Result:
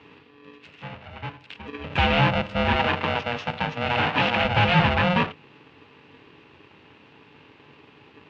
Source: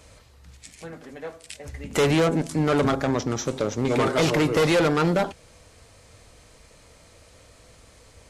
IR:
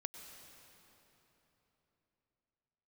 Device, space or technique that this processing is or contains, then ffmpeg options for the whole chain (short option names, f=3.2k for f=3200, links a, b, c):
ring modulator pedal into a guitar cabinet: -filter_complex "[0:a]aeval=exprs='val(0)*sgn(sin(2*PI*360*n/s))':c=same,highpass=81,equalizer=f=88:t=q:w=4:g=7,equalizer=f=150:t=q:w=4:g=7,equalizer=f=640:t=q:w=4:g=-3,equalizer=f=2.7k:t=q:w=4:g=8,lowpass=f=3.4k:w=0.5412,lowpass=f=3.4k:w=1.3066,asettb=1/sr,asplit=3[a][b][c];[a]atrim=end=2.764[d];[b]atrim=start=2.76:end=4.45,asetpts=PTS-STARTPTS,afade=t=in:d=0.004:c=qsin,afade=t=out:st=1.686:d=0.004:c=qsin,highpass=f=230:p=1[e];[c]atrim=start=4.446[f];[d][e]acrossfade=d=0.004:c1=hsin:c2=qsin[g];[g][f]acrossfade=d=0.004:c1=qsin:c2=hsin"